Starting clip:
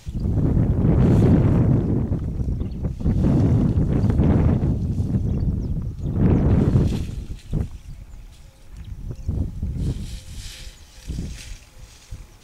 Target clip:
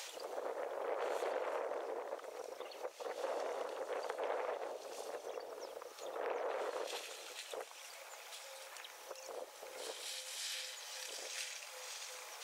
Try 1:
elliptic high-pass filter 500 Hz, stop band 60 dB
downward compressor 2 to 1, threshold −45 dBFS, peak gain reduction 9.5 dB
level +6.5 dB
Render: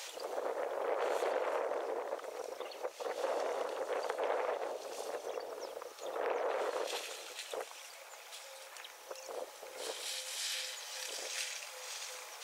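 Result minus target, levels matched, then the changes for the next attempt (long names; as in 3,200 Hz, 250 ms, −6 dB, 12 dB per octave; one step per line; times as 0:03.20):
downward compressor: peak gain reduction −4.5 dB
change: downward compressor 2 to 1, threshold −54 dBFS, peak gain reduction 14 dB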